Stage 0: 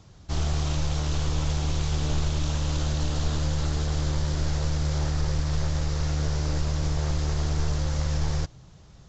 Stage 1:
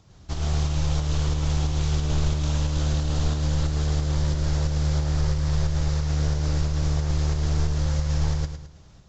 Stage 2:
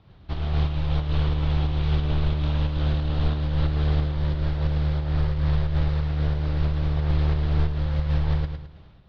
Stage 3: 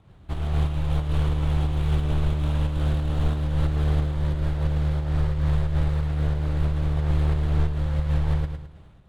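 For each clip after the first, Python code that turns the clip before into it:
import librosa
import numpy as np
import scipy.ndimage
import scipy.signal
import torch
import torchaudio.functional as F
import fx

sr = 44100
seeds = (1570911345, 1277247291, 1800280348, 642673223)

y1 = fx.volume_shaper(x, sr, bpm=90, per_beat=2, depth_db=-5, release_ms=97.0, shape='slow start')
y1 = fx.echo_feedback(y1, sr, ms=107, feedback_pct=41, wet_db=-9.0)
y2 = scipy.signal.sosfilt(scipy.signal.butter(6, 3900.0, 'lowpass', fs=sr, output='sos'), y1)
y2 = fx.am_noise(y2, sr, seeds[0], hz=5.7, depth_pct=55)
y2 = F.gain(torch.from_numpy(y2), 3.0).numpy()
y3 = scipy.ndimage.median_filter(y2, 9, mode='constant')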